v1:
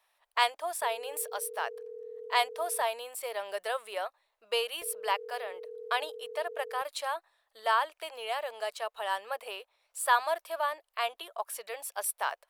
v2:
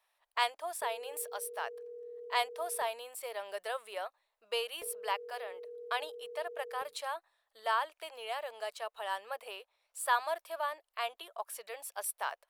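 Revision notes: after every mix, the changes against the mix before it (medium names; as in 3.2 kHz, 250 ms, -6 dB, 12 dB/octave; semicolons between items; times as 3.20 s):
speech -4.5 dB; reverb: on, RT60 0.45 s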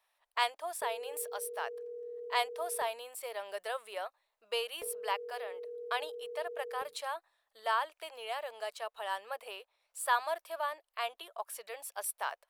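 background +3.0 dB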